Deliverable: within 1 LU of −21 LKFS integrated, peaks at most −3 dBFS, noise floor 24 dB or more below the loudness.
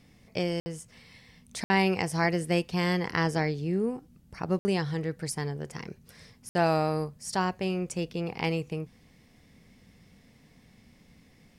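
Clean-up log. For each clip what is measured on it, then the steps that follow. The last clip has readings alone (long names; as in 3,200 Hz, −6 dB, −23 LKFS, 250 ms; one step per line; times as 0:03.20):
number of dropouts 4; longest dropout 60 ms; integrated loudness −29.5 LKFS; sample peak −12.0 dBFS; target loudness −21.0 LKFS
→ repair the gap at 0:00.60/0:01.64/0:04.59/0:06.49, 60 ms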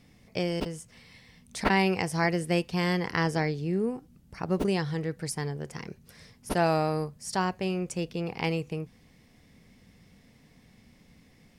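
number of dropouts 0; integrated loudness −29.5 LKFS; sample peak −12.0 dBFS; target loudness −21.0 LKFS
→ level +8.5 dB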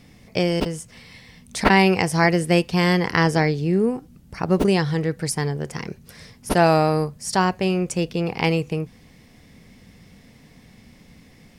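integrated loudness −21.0 LKFS; sample peak −3.5 dBFS; background noise floor −51 dBFS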